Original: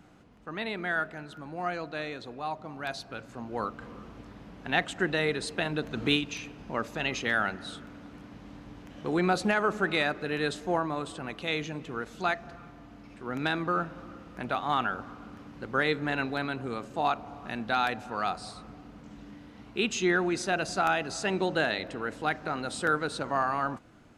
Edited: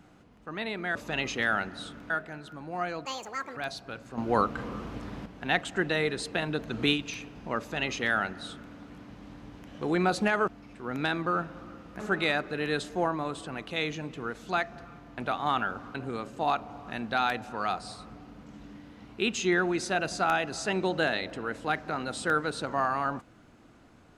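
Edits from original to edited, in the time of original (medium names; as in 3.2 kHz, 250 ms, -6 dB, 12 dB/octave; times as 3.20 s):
1.90–2.80 s: speed 174%
3.41–4.49 s: gain +8 dB
6.82–7.97 s: copy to 0.95 s
12.89–14.41 s: move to 9.71 s
15.18–16.52 s: delete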